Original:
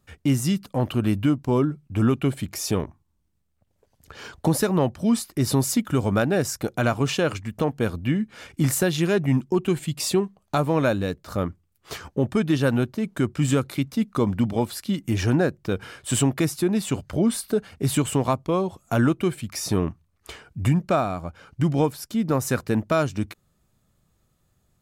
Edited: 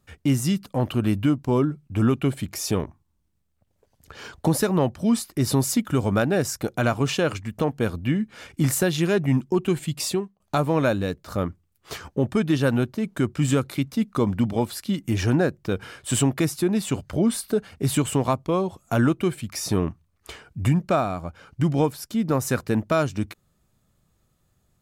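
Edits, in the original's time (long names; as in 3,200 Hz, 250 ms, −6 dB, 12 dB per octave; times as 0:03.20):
0:10.01–0:10.40: fade out, to −18.5 dB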